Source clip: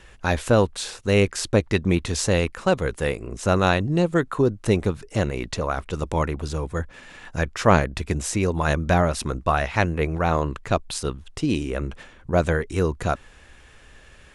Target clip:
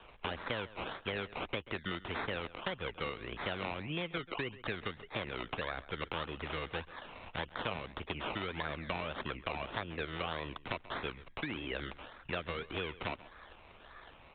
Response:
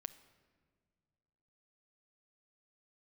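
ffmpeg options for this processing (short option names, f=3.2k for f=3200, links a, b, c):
-filter_complex "[0:a]acrusher=samples=21:mix=1:aa=0.000001:lfo=1:lforange=12.6:lforate=1.7,tiltshelf=f=700:g=-8.5,acrossover=split=180|520[a][b][c];[a]acompressor=threshold=-41dB:ratio=4[d];[b]acompressor=threshold=-35dB:ratio=4[e];[c]acompressor=threshold=-29dB:ratio=4[f];[d][e][f]amix=inputs=3:normalize=0,asplit=2[g][h];[h]adelay=134.1,volume=-20dB,highshelf=f=4k:g=-3.02[i];[g][i]amix=inputs=2:normalize=0,acompressor=threshold=-29dB:ratio=2.5,aresample=8000,aresample=44100,volume=-4dB"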